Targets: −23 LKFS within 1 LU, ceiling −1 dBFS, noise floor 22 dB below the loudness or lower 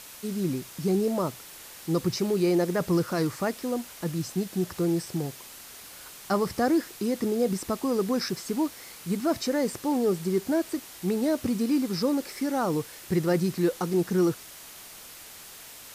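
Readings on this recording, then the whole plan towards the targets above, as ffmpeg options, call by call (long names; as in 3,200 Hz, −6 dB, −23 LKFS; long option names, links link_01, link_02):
background noise floor −46 dBFS; target noise floor −50 dBFS; integrated loudness −27.5 LKFS; sample peak −13.5 dBFS; target loudness −23.0 LKFS
→ -af "afftdn=noise_reduction=6:noise_floor=-46"
-af "volume=4.5dB"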